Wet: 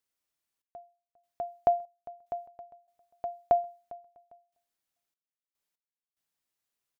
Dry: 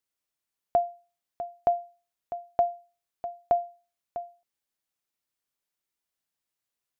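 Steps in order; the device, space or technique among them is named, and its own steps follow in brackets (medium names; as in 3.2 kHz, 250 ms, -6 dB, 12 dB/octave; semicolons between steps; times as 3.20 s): trance gate with a delay (trance gate "xxx...xxx..x..xx" 73 bpm -24 dB; feedback delay 402 ms, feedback 24%, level -21 dB)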